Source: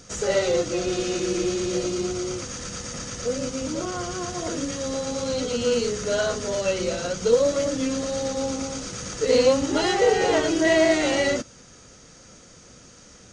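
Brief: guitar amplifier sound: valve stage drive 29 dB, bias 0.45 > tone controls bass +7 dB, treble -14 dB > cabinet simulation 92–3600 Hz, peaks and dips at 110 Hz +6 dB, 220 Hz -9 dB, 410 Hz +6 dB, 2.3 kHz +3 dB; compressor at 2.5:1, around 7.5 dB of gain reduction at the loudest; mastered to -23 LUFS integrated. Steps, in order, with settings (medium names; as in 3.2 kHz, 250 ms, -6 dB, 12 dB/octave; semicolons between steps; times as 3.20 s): compression 2.5:1, threshold -25 dBFS; valve stage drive 29 dB, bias 0.45; tone controls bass +7 dB, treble -14 dB; cabinet simulation 92–3600 Hz, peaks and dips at 110 Hz +6 dB, 220 Hz -9 dB, 410 Hz +6 dB, 2.3 kHz +3 dB; trim +9 dB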